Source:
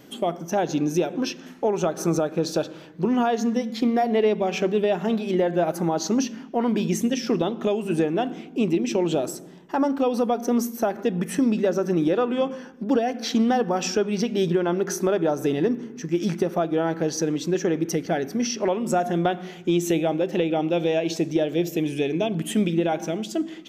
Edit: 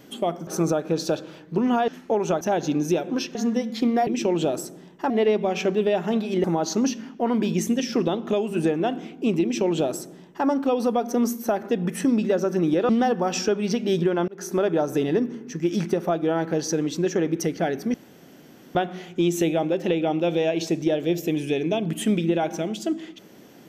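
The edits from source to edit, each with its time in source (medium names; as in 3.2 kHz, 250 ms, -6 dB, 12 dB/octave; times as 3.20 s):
0.47–1.41 s: swap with 1.94–3.35 s
5.41–5.78 s: delete
8.77–9.80 s: copy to 4.07 s
12.23–13.38 s: delete
14.77–15.09 s: fade in
18.43–19.24 s: room tone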